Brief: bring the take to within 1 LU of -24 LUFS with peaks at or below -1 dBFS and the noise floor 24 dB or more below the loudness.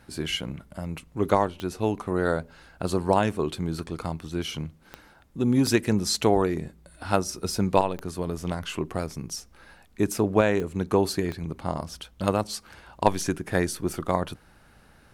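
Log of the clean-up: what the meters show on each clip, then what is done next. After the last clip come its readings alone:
clicks found 6; loudness -27.0 LUFS; peak level -4.5 dBFS; loudness target -24.0 LUFS
-> de-click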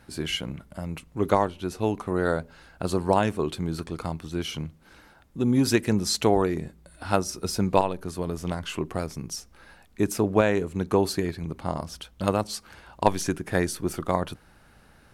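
clicks found 0; loudness -27.0 LUFS; peak level -4.5 dBFS; loudness target -24.0 LUFS
-> trim +3 dB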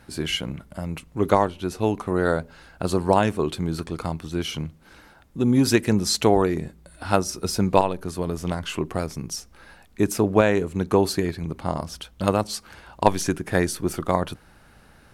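loudness -24.0 LUFS; peak level -1.5 dBFS; noise floor -53 dBFS

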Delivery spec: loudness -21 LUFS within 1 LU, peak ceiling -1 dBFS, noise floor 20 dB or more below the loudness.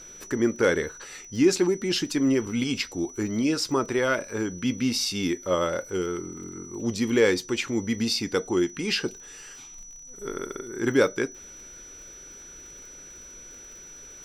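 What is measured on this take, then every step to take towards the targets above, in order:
tick rate 36 per s; steady tone 5.9 kHz; tone level -43 dBFS; loudness -26.0 LUFS; peak level -8.5 dBFS; loudness target -21.0 LUFS
-> de-click; band-stop 5.9 kHz, Q 30; trim +5 dB

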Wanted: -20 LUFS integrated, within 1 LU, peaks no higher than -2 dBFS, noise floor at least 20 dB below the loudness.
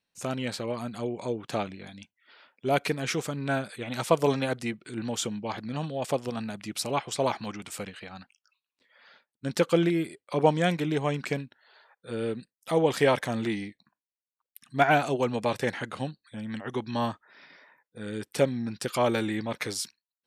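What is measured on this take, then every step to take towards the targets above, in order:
loudness -29.0 LUFS; peak level -8.5 dBFS; loudness target -20.0 LUFS
-> trim +9 dB; peak limiter -2 dBFS

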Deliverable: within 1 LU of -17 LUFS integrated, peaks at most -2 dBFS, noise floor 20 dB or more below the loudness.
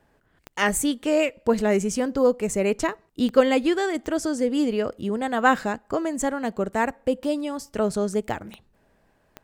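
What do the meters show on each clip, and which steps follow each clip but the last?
clicks found 5; loudness -24.0 LUFS; peak level -4.0 dBFS; loudness target -17.0 LUFS
-> de-click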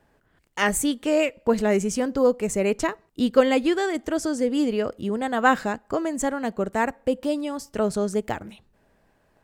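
clicks found 0; loudness -24.0 LUFS; peak level -4.0 dBFS; loudness target -17.0 LUFS
-> trim +7 dB; peak limiter -2 dBFS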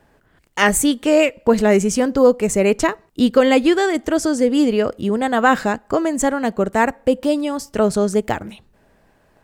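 loudness -17.5 LUFS; peak level -2.0 dBFS; noise floor -58 dBFS

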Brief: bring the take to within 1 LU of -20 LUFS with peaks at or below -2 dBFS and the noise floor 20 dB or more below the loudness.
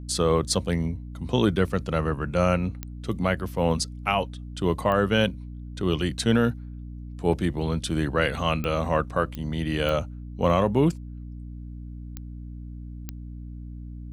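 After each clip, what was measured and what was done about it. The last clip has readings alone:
clicks found 7; hum 60 Hz; highest harmonic 300 Hz; hum level -36 dBFS; loudness -25.5 LUFS; peak level -9.5 dBFS; loudness target -20.0 LUFS
-> de-click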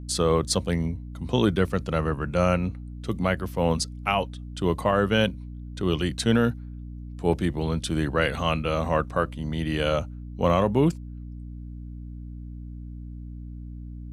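clicks found 0; hum 60 Hz; highest harmonic 300 Hz; hum level -36 dBFS
-> de-hum 60 Hz, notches 5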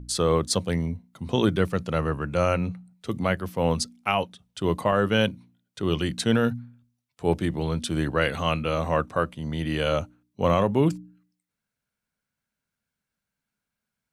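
hum not found; loudness -25.5 LUFS; peak level -9.0 dBFS; loudness target -20.0 LUFS
-> trim +5.5 dB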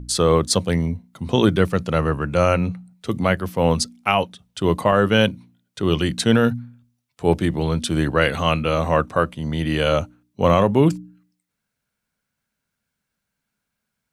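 loudness -20.0 LUFS; peak level -3.5 dBFS; noise floor -80 dBFS

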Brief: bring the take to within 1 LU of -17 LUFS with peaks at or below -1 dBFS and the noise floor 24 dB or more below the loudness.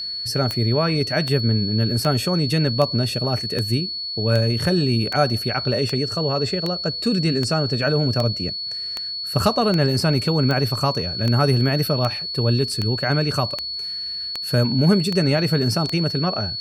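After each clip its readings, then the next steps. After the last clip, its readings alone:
clicks found 21; steady tone 4.4 kHz; tone level -26 dBFS; loudness -20.5 LUFS; peak level -4.0 dBFS; loudness target -17.0 LUFS
-> de-click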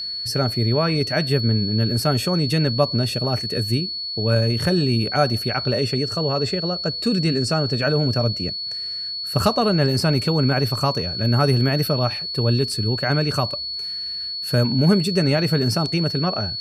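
clicks found 0; steady tone 4.4 kHz; tone level -26 dBFS
-> band-stop 4.4 kHz, Q 30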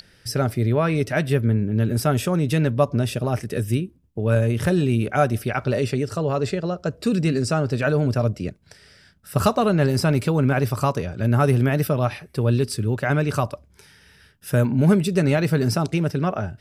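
steady tone not found; loudness -22.0 LUFS; peak level -5.0 dBFS; loudness target -17.0 LUFS
-> trim +5 dB; peak limiter -1 dBFS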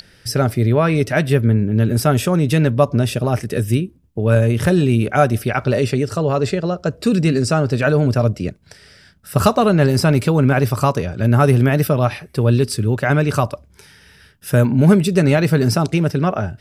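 loudness -17.0 LUFS; peak level -1.0 dBFS; noise floor -51 dBFS

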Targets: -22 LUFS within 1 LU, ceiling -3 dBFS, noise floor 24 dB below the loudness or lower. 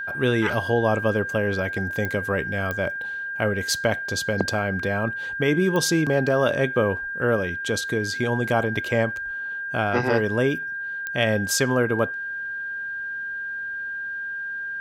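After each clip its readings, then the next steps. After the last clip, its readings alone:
clicks found 4; steady tone 1.6 kHz; tone level -28 dBFS; loudness -24.0 LUFS; peak level -6.0 dBFS; loudness target -22.0 LUFS
-> de-click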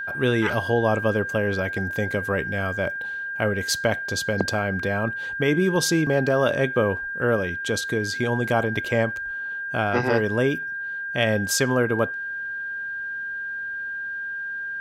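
clicks found 0; steady tone 1.6 kHz; tone level -28 dBFS
-> band-stop 1.6 kHz, Q 30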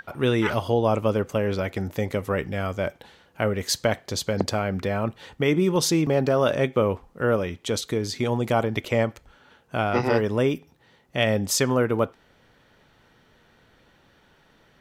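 steady tone not found; loudness -24.5 LUFS; peak level -6.5 dBFS; loudness target -22.0 LUFS
-> trim +2.5 dB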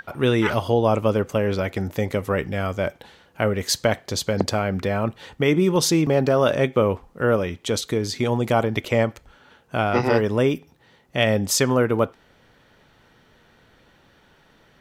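loudness -22.0 LUFS; peak level -4.0 dBFS; noise floor -57 dBFS

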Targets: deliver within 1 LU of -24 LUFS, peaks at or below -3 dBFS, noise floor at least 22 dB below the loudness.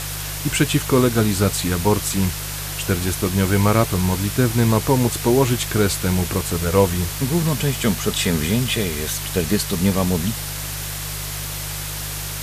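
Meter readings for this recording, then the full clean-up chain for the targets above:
hum 50 Hz; highest harmonic 150 Hz; hum level -29 dBFS; noise floor -28 dBFS; noise floor target -42 dBFS; loudness -20.0 LUFS; peak level -3.0 dBFS; loudness target -24.0 LUFS
-> de-hum 50 Hz, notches 3; noise print and reduce 14 dB; trim -4 dB

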